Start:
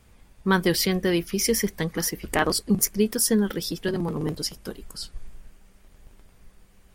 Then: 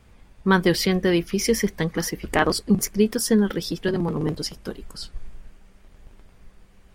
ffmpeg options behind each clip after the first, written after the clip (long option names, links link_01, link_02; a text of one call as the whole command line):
ffmpeg -i in.wav -af "equalizer=frequency=14000:width=0.35:gain=-9.5,volume=3dB" out.wav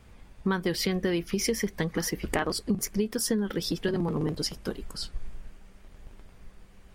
ffmpeg -i in.wav -af "acompressor=threshold=-24dB:ratio=6" out.wav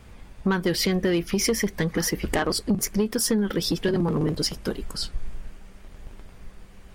ffmpeg -i in.wav -af "asoftclip=type=tanh:threshold=-20dB,volume=6dB" out.wav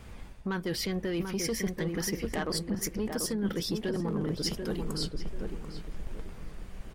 ffmpeg -i in.wav -filter_complex "[0:a]areverse,acompressor=threshold=-30dB:ratio=6,areverse,asplit=2[link_01][link_02];[link_02]adelay=739,lowpass=frequency=1200:poles=1,volume=-4.5dB,asplit=2[link_03][link_04];[link_04]adelay=739,lowpass=frequency=1200:poles=1,volume=0.35,asplit=2[link_05][link_06];[link_06]adelay=739,lowpass=frequency=1200:poles=1,volume=0.35,asplit=2[link_07][link_08];[link_08]adelay=739,lowpass=frequency=1200:poles=1,volume=0.35[link_09];[link_01][link_03][link_05][link_07][link_09]amix=inputs=5:normalize=0" out.wav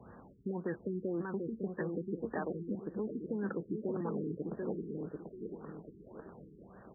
ffmpeg -i in.wav -filter_complex "[0:a]acrossover=split=260|830[link_01][link_02][link_03];[link_01]acompressor=threshold=-40dB:ratio=4[link_04];[link_02]acompressor=threshold=-36dB:ratio=4[link_05];[link_03]acompressor=threshold=-37dB:ratio=4[link_06];[link_04][link_05][link_06]amix=inputs=3:normalize=0,highpass=150,lowpass=5300,afftfilt=real='re*lt(b*sr/1024,430*pow(1900/430,0.5+0.5*sin(2*PI*1.8*pts/sr)))':imag='im*lt(b*sr/1024,430*pow(1900/430,0.5+0.5*sin(2*PI*1.8*pts/sr)))':win_size=1024:overlap=0.75" out.wav